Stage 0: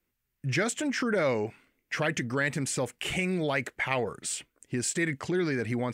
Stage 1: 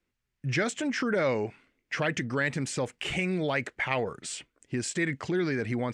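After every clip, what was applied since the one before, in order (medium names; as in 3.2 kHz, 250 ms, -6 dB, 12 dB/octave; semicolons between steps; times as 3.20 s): low-pass 6.7 kHz 12 dB/octave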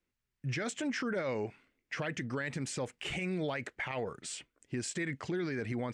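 peak limiter -22 dBFS, peak gain reduction 8.5 dB; trim -4.5 dB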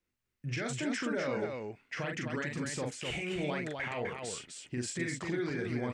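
loudspeakers at several distances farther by 14 m -4 dB, 87 m -4 dB; trim -1.5 dB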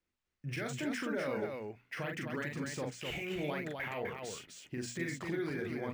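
hum notches 60/120/180/240 Hz; decimation joined by straight lines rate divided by 3×; trim -2 dB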